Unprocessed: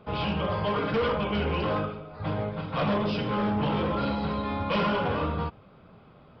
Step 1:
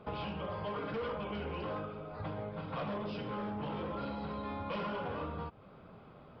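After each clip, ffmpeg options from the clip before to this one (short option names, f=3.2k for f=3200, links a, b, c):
-af "highshelf=f=3.5k:g=-9.5,acompressor=threshold=-36dB:ratio=6,bass=f=250:g=-3,treble=f=4k:g=3"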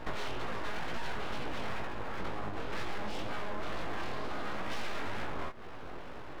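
-af "aeval=exprs='abs(val(0))':c=same,acompressor=threshold=-44dB:ratio=6,flanger=delay=16.5:depth=7.4:speed=2.1,volume=15dB"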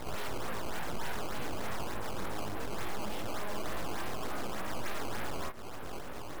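-af "alimiter=level_in=4.5dB:limit=-24dB:level=0:latency=1,volume=-4.5dB,acrusher=samples=14:mix=1:aa=0.000001:lfo=1:lforange=22.4:lforate=3.4,volume=2.5dB"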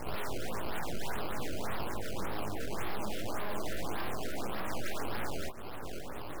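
-af "afftfilt=real='re*(1-between(b*sr/1024,910*pow(7800/910,0.5+0.5*sin(2*PI*1.8*pts/sr))/1.41,910*pow(7800/910,0.5+0.5*sin(2*PI*1.8*pts/sr))*1.41))':imag='im*(1-between(b*sr/1024,910*pow(7800/910,0.5+0.5*sin(2*PI*1.8*pts/sr))/1.41,910*pow(7800/910,0.5+0.5*sin(2*PI*1.8*pts/sr))*1.41))':win_size=1024:overlap=0.75,volume=1dB"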